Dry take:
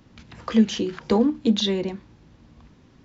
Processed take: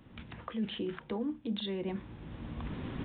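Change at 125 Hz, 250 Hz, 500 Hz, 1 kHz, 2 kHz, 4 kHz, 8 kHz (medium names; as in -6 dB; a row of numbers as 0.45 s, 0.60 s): -8.0 dB, -14.5 dB, -13.5 dB, -12.5 dB, -9.0 dB, -13.5 dB, no reading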